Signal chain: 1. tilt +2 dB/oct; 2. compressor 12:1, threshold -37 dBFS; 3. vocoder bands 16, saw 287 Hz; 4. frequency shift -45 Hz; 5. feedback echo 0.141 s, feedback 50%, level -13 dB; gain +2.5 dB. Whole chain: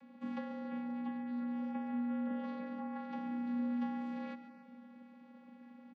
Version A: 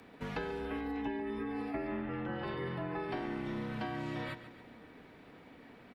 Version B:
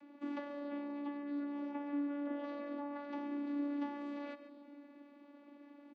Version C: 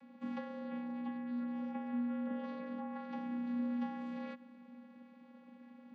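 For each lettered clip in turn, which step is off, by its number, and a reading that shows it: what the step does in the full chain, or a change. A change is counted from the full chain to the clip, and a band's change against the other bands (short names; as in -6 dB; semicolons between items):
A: 3, 250 Hz band -11.5 dB; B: 4, 500 Hz band +5.5 dB; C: 5, echo-to-direct -11.5 dB to none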